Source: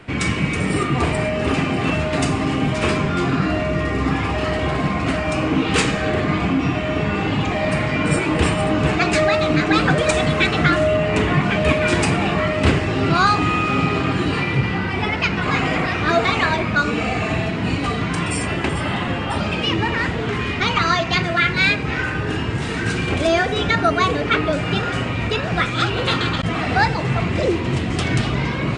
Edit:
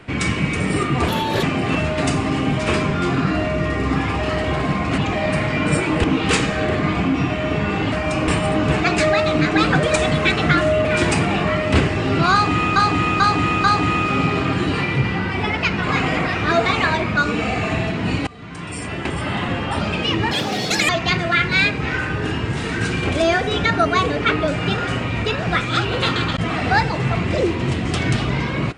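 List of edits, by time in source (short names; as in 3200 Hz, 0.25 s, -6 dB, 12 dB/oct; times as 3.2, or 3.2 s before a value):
1.08–1.58 speed 143%
5.13–5.49 swap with 7.37–8.43
11–11.76 cut
13.23–13.67 loop, 4 plays
17.86–19.03 fade in, from -23.5 dB
19.9–20.94 speed 179%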